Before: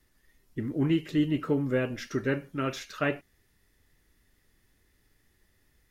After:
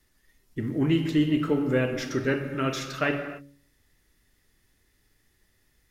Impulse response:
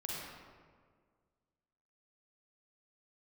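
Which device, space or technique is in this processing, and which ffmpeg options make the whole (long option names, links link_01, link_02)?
keyed gated reverb: -filter_complex "[0:a]asplit=3[link_01][link_02][link_03];[1:a]atrim=start_sample=2205[link_04];[link_02][link_04]afir=irnorm=-1:irlink=0[link_05];[link_03]apad=whole_len=260554[link_06];[link_05][link_06]sidechaingate=range=-33dB:threshold=-58dB:ratio=16:detection=peak,volume=-5dB[link_07];[link_01][link_07]amix=inputs=2:normalize=0,equalizer=frequency=6300:width=0.43:gain=3,bandreject=frequency=70.63:width_type=h:width=4,bandreject=frequency=141.26:width_type=h:width=4,bandreject=frequency=211.89:width_type=h:width=4,bandreject=frequency=282.52:width_type=h:width=4,bandreject=frequency=353.15:width_type=h:width=4,bandreject=frequency=423.78:width_type=h:width=4,bandreject=frequency=494.41:width_type=h:width=4,bandreject=frequency=565.04:width_type=h:width=4"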